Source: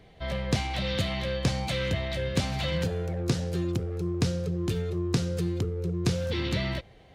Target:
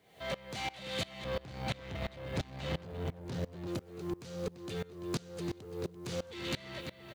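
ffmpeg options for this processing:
ffmpeg -i in.wav -filter_complex "[0:a]lowpass=9000,lowshelf=frequency=260:gain=-9.5,bandreject=frequency=5300:width=14,asplit=2[link_01][link_02];[link_02]adelay=340,lowpass=frequency=4600:poles=1,volume=-12.5dB,asplit=2[link_03][link_04];[link_04]adelay=340,lowpass=frequency=4600:poles=1,volume=0.53,asplit=2[link_05][link_06];[link_06]adelay=340,lowpass=frequency=4600:poles=1,volume=0.53,asplit=2[link_07][link_08];[link_08]adelay=340,lowpass=frequency=4600:poles=1,volume=0.53,asplit=2[link_09][link_10];[link_10]adelay=340,lowpass=frequency=4600:poles=1,volume=0.53[link_11];[link_01][link_03][link_05][link_07][link_09][link_11]amix=inputs=6:normalize=0,acompressor=threshold=-52dB:ratio=1.5,asettb=1/sr,asplit=3[link_12][link_13][link_14];[link_12]atrim=end=1.244[link_15];[link_13]atrim=start=1.24:end=3.67,asetpts=PTS-STARTPTS,afade=type=in:duration=0.004:curve=qsin,afade=type=out:start_time=2.426:duration=0.004:curve=qsin,aemphasis=mode=reproduction:type=bsi[link_16];[link_14]atrim=start=3.666[link_17];[link_15][link_16]acrossfade=duration=0.004:curve1=hsin:curve2=qsin[link_18];[link_18][link_17]acrossfade=duration=0.004:curve1=qsin:curve2=hsin,acrusher=bits=10:mix=0:aa=0.000001,asoftclip=type=tanh:threshold=-38.5dB,highpass=95,aeval=exprs='val(0)*pow(10,-23*if(lt(mod(-2.9*n/s,1),2*abs(-2.9)/1000),1-mod(-2.9*n/s,1)/(2*abs(-2.9)/1000),(mod(-2.9*n/s,1)-2*abs(-2.9)/1000)/(1-2*abs(-2.9)/1000))/20)':channel_layout=same,volume=12dB" out.wav

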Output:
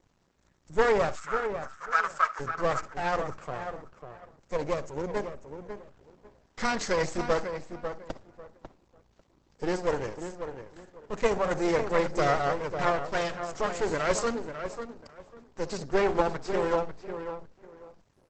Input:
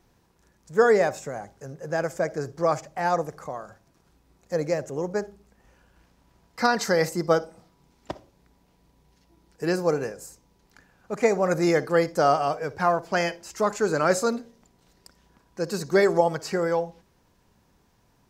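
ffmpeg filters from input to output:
ffmpeg -i in.wav -filter_complex "[0:a]asplit=2[link_01][link_02];[link_02]asoftclip=type=tanh:threshold=-23dB,volume=-11dB[link_03];[link_01][link_03]amix=inputs=2:normalize=0,asettb=1/sr,asplit=3[link_04][link_05][link_06];[link_04]atrim=end=15.774[link_07];[link_05]atrim=start=15.77:end=16.54,asetpts=PTS-STARTPTS,afade=type=in:duration=0.004:curve=qsin,afade=type=out:start_time=0.766:duration=0.004:curve=qsin,lowpass=frequency=3400:poles=1[link_08];[link_06]atrim=start=16.536[link_09];[link_07][link_08]acrossfade=duration=0.004:curve1=hsin:curve2=qsin[link_10];[link_10][link_09]acrossfade=duration=0.004:curve1=qsin:curve2=hsin,aeval=exprs='max(val(0),0)':channel_layout=same,asplit=3[link_11][link_12][link_13];[link_11]afade=type=out:start_time=1.15:duration=0.02[link_14];[link_12]highpass=frequency=1300:width_type=q:width=8.4,afade=type=in:start_time=1.15:duration=0.02,afade=type=out:start_time=2.39:duration=0.02[link_15];[link_13]afade=type=in:start_time=2.39:duration=0.02[link_16];[link_14][link_15][link_16]amix=inputs=3:normalize=0,asplit=2[link_17][link_18];[link_18]adelay=546,lowpass=frequency=2500:poles=1,volume=-8dB,asplit=2[link_19][link_20];[link_20]adelay=546,lowpass=frequency=2500:poles=1,volume=0.24,asplit=2[link_21][link_22];[link_22]adelay=546,lowpass=frequency=2500:poles=1,volume=0.24[link_23];[link_19][link_21][link_23]amix=inputs=3:normalize=0[link_24];[link_17][link_24]amix=inputs=2:normalize=0" -ar 48000 -c:a libopus -b:a 12k out.opus

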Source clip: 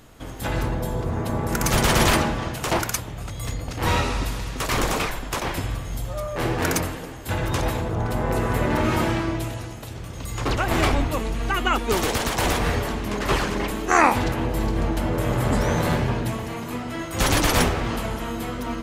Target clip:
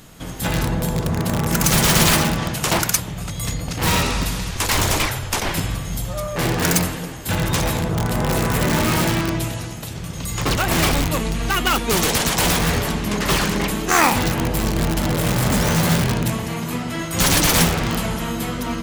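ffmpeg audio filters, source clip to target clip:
ffmpeg -i in.wav -filter_complex "[0:a]equalizer=frequency=170:width=2.8:gain=10.5,asplit=2[link_01][link_02];[link_02]aeval=exprs='(mod(5.31*val(0)+1,2)-1)/5.31':channel_layout=same,volume=-7dB[link_03];[link_01][link_03]amix=inputs=2:normalize=0,highshelf=frequency=2400:gain=8,asettb=1/sr,asplit=3[link_04][link_05][link_06];[link_04]atrim=end=4.514[link_07];[link_05]atrim=start=4.51:end=5.49,asetpts=PTS-STARTPTS,afade=type=in:duration=0.004:curve=qsin,afade=type=out:start_time=0.976:duration=0.004:curve=qsin,afreqshift=-140[link_08];[link_06]atrim=start=5.486[link_09];[link_07][link_08]acrossfade=duration=0.004:curve1=hsin:curve2=qsin[link_10];[link_10][link_09]acrossfade=duration=0.004:curve1=qsin:curve2=hsin,volume=-1.5dB" out.wav

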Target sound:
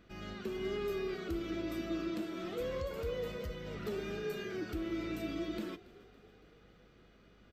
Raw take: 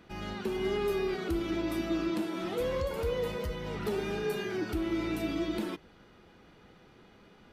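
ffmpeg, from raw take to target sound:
ffmpeg -i in.wav -filter_complex "[0:a]aeval=exprs='val(0)+0.001*(sin(2*PI*50*n/s)+sin(2*PI*2*50*n/s)/2+sin(2*PI*3*50*n/s)/3+sin(2*PI*4*50*n/s)/4+sin(2*PI*5*50*n/s)/5)':channel_layout=same,superequalizer=9b=0.447:16b=0.398,asplit=6[link_01][link_02][link_03][link_04][link_05][link_06];[link_02]adelay=280,afreqshift=32,volume=-21dB[link_07];[link_03]adelay=560,afreqshift=64,volume=-25dB[link_08];[link_04]adelay=840,afreqshift=96,volume=-29dB[link_09];[link_05]adelay=1120,afreqshift=128,volume=-33dB[link_10];[link_06]adelay=1400,afreqshift=160,volume=-37.1dB[link_11];[link_01][link_07][link_08][link_09][link_10][link_11]amix=inputs=6:normalize=0,volume=-6dB" out.wav

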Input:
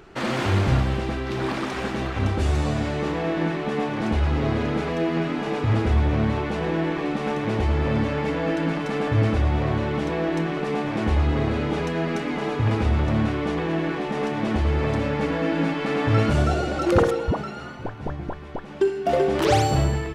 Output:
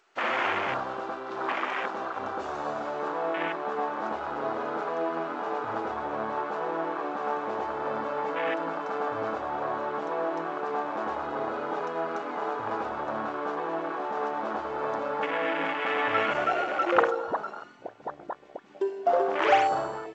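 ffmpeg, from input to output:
ffmpeg -i in.wav -af "afwtdn=0.0316,highpass=740,volume=3.5dB" -ar 16000 -c:a g722 out.g722

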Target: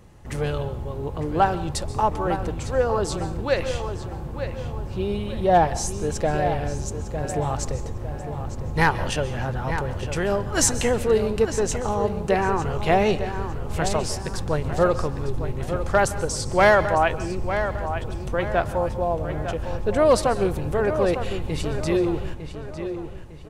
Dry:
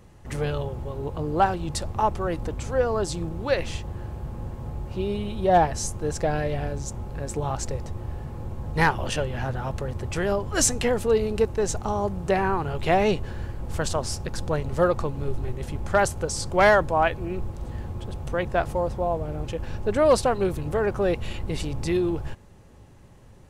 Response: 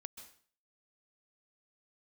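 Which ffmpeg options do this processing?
-filter_complex "[0:a]asplit=2[link_01][link_02];[link_02]adelay=904,lowpass=frequency=3700:poles=1,volume=-9dB,asplit=2[link_03][link_04];[link_04]adelay=904,lowpass=frequency=3700:poles=1,volume=0.42,asplit=2[link_05][link_06];[link_06]adelay=904,lowpass=frequency=3700:poles=1,volume=0.42,asplit=2[link_07][link_08];[link_08]adelay=904,lowpass=frequency=3700:poles=1,volume=0.42,asplit=2[link_09][link_10];[link_10]adelay=904,lowpass=frequency=3700:poles=1,volume=0.42[link_11];[link_01][link_03][link_05][link_07][link_09][link_11]amix=inputs=6:normalize=0,asplit=2[link_12][link_13];[1:a]atrim=start_sample=2205[link_14];[link_13][link_14]afir=irnorm=-1:irlink=0,volume=3dB[link_15];[link_12][link_15]amix=inputs=2:normalize=0,volume=-3.5dB"

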